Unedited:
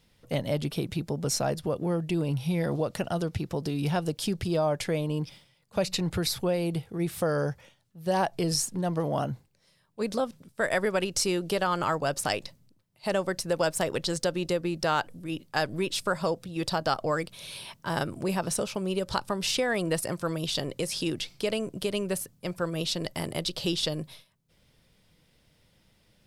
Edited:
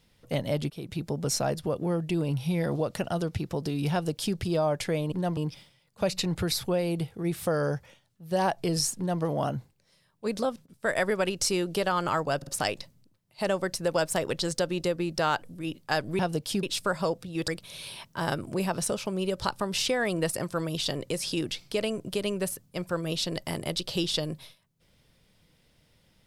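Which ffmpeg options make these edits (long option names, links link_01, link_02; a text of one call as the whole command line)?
ffmpeg -i in.wav -filter_complex "[0:a]asplit=11[link_01][link_02][link_03][link_04][link_05][link_06][link_07][link_08][link_09][link_10][link_11];[link_01]atrim=end=0.7,asetpts=PTS-STARTPTS,afade=type=out:start_time=0.696:duration=0.004:curve=hsin:silence=0.133352[link_12];[link_02]atrim=start=0.7:end=5.122,asetpts=PTS-STARTPTS,afade=type=in:duration=0.36:silence=0.133352[link_13];[link_03]atrim=start=8.718:end=8.972[link_14];[link_04]atrim=start=5.118:end=10.41,asetpts=PTS-STARTPTS,afade=type=out:start_time=5.042:duration=0.25:curve=log:silence=0.149624[link_15];[link_05]atrim=start=10.41:end=10.44,asetpts=PTS-STARTPTS,volume=-16.5dB[link_16];[link_06]atrim=start=10.44:end=12.172,asetpts=PTS-STARTPTS,afade=type=in:duration=0.25:curve=log:silence=0.149624[link_17];[link_07]atrim=start=12.118:end=12.172[link_18];[link_08]atrim=start=12.118:end=15.842[link_19];[link_09]atrim=start=3.918:end=4.362[link_20];[link_10]atrim=start=15.838:end=16.692[link_21];[link_11]atrim=start=17.168[link_22];[link_12][link_13]concat=n=2:v=0:a=1[link_23];[link_23][link_14]acrossfade=duration=0.004:curve1=hsin:curve2=hsin[link_24];[link_15][link_16][link_17]concat=n=3:v=0:a=1[link_25];[link_24][link_25]acrossfade=duration=0.004:curve1=hsin:curve2=hsin[link_26];[link_26][link_18]acrossfade=duration=0.004:curve1=hsin:curve2=hsin[link_27];[link_27][link_19]acrossfade=duration=0.004:curve1=hsin:curve2=hsin[link_28];[link_28][link_20]acrossfade=duration=0.004:curve1=hsin:curve2=hsin[link_29];[link_29][link_21]acrossfade=duration=0.004:curve1=hsin:curve2=hsin[link_30];[link_30][link_22]acrossfade=duration=0.004:curve1=hsin:curve2=hsin" out.wav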